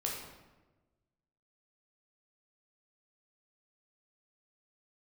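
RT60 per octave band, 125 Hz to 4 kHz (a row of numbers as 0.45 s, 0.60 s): 1.6 s, 1.4 s, 1.3 s, 1.1 s, 0.95 s, 0.75 s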